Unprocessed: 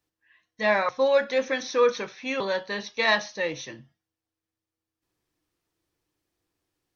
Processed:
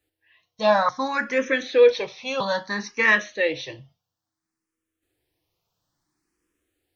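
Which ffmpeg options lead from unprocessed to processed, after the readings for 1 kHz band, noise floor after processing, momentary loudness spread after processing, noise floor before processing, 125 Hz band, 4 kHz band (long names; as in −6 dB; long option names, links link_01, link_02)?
+4.0 dB, −85 dBFS, 11 LU, below −85 dBFS, +4.0 dB, +0.5 dB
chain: -filter_complex "[0:a]asplit=2[link_01][link_02];[link_02]afreqshift=0.59[link_03];[link_01][link_03]amix=inputs=2:normalize=1,volume=6.5dB"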